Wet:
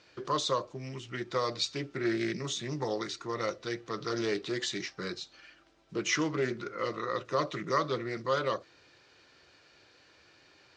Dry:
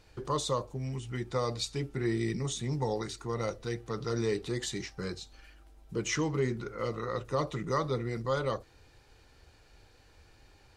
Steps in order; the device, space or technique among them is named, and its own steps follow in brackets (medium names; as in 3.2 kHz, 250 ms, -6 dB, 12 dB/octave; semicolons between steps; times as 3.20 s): full-range speaker at full volume (loudspeaker Doppler distortion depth 0.17 ms; cabinet simulation 240–6200 Hz, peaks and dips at 240 Hz -6 dB, 450 Hz -6 dB, 820 Hz -9 dB); trim +4.5 dB